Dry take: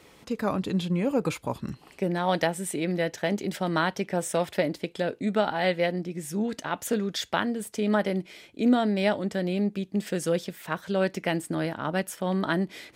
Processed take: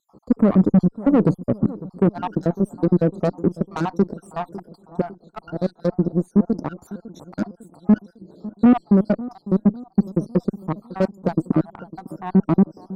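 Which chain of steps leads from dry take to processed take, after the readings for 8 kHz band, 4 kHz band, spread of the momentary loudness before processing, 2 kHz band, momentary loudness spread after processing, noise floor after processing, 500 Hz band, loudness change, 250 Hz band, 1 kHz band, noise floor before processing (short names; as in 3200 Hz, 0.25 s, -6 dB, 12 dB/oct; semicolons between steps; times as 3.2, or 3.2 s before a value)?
under -15 dB, under -10 dB, 7 LU, -8.5 dB, 16 LU, -59 dBFS, +2.5 dB, +6.5 dB, +9.0 dB, 0.0 dB, -55 dBFS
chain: random spectral dropouts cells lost 66%; tone controls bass +3 dB, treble -13 dB; in parallel at -10.5 dB: sine folder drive 12 dB, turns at -11.5 dBFS; on the sum: elliptic band-stop 1300–4300 Hz, stop band 50 dB; added harmonics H 3 -13 dB, 6 -26 dB, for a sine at -12.5 dBFS; bell 250 Hz +12.5 dB 2.6 oct; on a send: analogue delay 0.552 s, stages 4096, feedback 52%, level -17.5 dB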